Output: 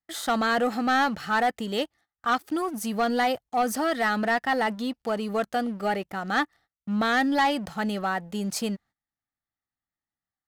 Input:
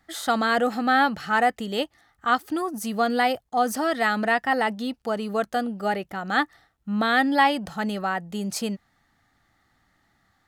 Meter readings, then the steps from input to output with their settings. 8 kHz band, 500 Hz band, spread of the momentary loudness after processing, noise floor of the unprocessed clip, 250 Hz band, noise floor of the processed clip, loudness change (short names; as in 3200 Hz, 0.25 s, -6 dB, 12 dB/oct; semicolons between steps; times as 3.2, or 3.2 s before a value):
-0.5 dB, -1.5 dB, 8 LU, -69 dBFS, -1.0 dB, under -85 dBFS, -2.0 dB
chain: gate -50 dBFS, range -18 dB; sample leveller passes 2; gain -8 dB